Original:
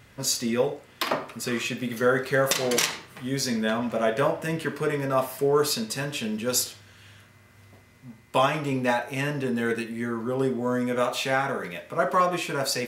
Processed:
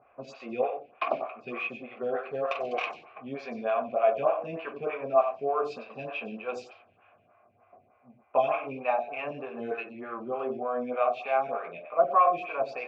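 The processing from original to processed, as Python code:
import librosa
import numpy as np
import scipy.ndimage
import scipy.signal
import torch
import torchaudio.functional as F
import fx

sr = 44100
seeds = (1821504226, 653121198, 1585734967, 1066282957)

p1 = scipy.signal.sosfilt(scipy.signal.butter(4, 6900.0, 'lowpass', fs=sr, output='sos'), x)
p2 = fx.peak_eq(p1, sr, hz=2200.0, db=10.0, octaves=0.8)
p3 = fx.rider(p2, sr, range_db=10, speed_s=0.5)
p4 = p2 + F.gain(torch.from_numpy(p3), 2.0).numpy()
p5 = fx.env_lowpass(p4, sr, base_hz=1300.0, full_db=-11.0)
p6 = fx.vowel_filter(p5, sr, vowel='a')
p7 = fx.tilt_eq(p6, sr, slope=-2.5)
p8 = p7 + 10.0 ** (-9.5 / 20.0) * np.pad(p7, (int(93 * sr / 1000.0), 0))[:len(p7)]
y = fx.stagger_phaser(p8, sr, hz=3.3)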